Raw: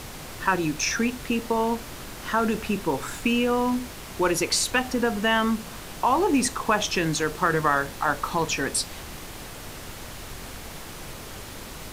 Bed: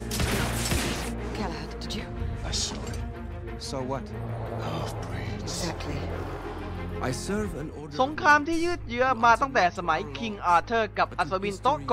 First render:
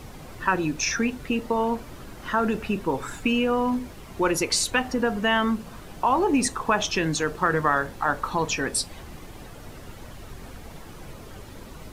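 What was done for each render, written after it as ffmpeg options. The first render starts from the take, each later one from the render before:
-af "afftdn=nr=10:nf=-39"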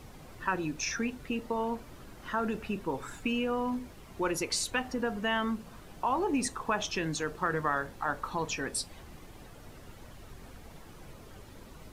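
-af "volume=0.398"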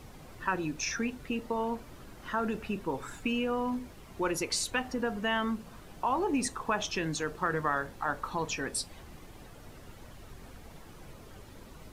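-af anull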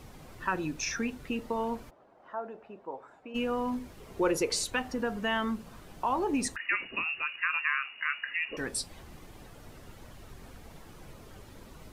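-filter_complex "[0:a]asplit=3[s0][s1][s2];[s0]afade=t=out:st=1.89:d=0.02[s3];[s1]bandpass=f=680:t=q:w=2.3,afade=t=in:st=1.89:d=0.02,afade=t=out:st=3.34:d=0.02[s4];[s2]afade=t=in:st=3.34:d=0.02[s5];[s3][s4][s5]amix=inputs=3:normalize=0,asettb=1/sr,asplit=3[s6][s7][s8];[s6]atrim=end=4.004[s9];[s7]atrim=start=4:end=4.65,asetpts=PTS-STARTPTS,afade=t=in:d=0.004:c=qsin,afade=t=out:st=0.646:d=0.004:c=qsin,equalizer=f=460:t=o:w=0.61:g=10[s10];[s8]atrim=start=4.646[s11];[s9][s10]acrossfade=d=0.004:c1=hsin:c2=qsin[s12];[s12][s11]acrossfade=d=0.004:c1=qsin:c2=hsin,asettb=1/sr,asplit=3[s13][s14][s15];[s13]atrim=end=6.564[s16];[s14]atrim=start=6.56:end=8.57,asetpts=PTS-STARTPTS,afade=t=in:d=0.004:c=qsin,afade=t=out:st=2.006:d=0.004:c=qsin,lowpass=f=2500:t=q:w=0.5098,lowpass=f=2500:t=q:w=0.6013,lowpass=f=2500:t=q:w=0.9,lowpass=f=2500:t=q:w=2.563,afreqshift=-2900[s17];[s15]atrim=start=8.566[s18];[s16][s17]acrossfade=d=0.004:c1=hsin:c2=qsin[s19];[s19][s18]acrossfade=d=0.004:c1=qsin:c2=hsin"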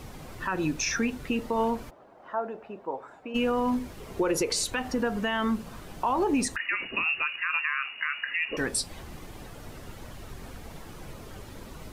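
-af "alimiter=limit=0.0631:level=0:latency=1:release=93,acontrast=63"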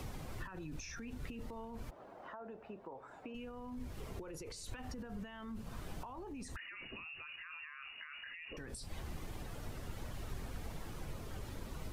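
-filter_complex "[0:a]alimiter=level_in=1.68:limit=0.0631:level=0:latency=1:release=27,volume=0.596,acrossover=split=130[s0][s1];[s1]acompressor=threshold=0.00398:ratio=5[s2];[s0][s2]amix=inputs=2:normalize=0"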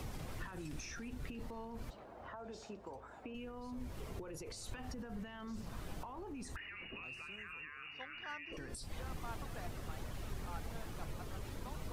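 -filter_complex "[1:a]volume=0.0335[s0];[0:a][s0]amix=inputs=2:normalize=0"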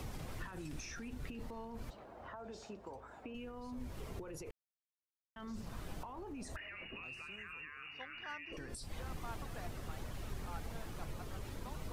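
-filter_complex "[0:a]asettb=1/sr,asplit=3[s0][s1][s2];[s0]atrim=end=6.374[s3];[s1]atrim=start=6.37:end=6.84,asetpts=PTS-STARTPTS,afade=t=in:d=0.004:c=qsin,afade=t=out:st=0.466:d=0.004:c=qsin,equalizer=f=620:t=o:w=0.31:g=14.5[s4];[s2]atrim=start=6.836[s5];[s3][s4]acrossfade=d=0.004:c1=hsin:c2=qsin[s6];[s6][s5]acrossfade=d=0.004:c1=qsin:c2=hsin,asplit=3[s7][s8][s9];[s7]atrim=end=4.51,asetpts=PTS-STARTPTS,afade=t=out:st=4.506:d=0.004:c=hsin[s10];[s8]atrim=start=4.51:end=5.36,asetpts=PTS-STARTPTS,volume=0[s11];[s9]atrim=start=5.36,asetpts=PTS-STARTPTS,afade=t=in:d=0.004:c=hsin[s12];[s10][s11][s12]concat=n=3:v=0:a=1"

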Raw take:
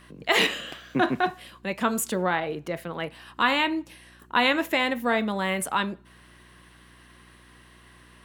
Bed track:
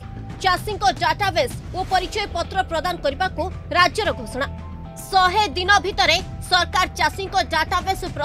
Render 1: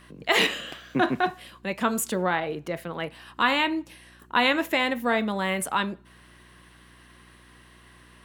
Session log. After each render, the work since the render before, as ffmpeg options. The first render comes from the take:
-af anull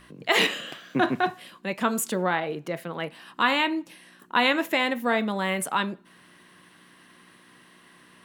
-af "bandreject=f=60:t=h:w=4,bandreject=f=120:t=h:w=4"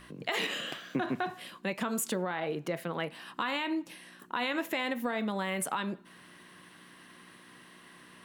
-af "alimiter=limit=0.15:level=0:latency=1:release=67,acompressor=threshold=0.0355:ratio=4"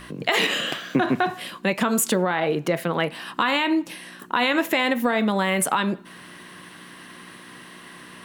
-af "volume=3.55"

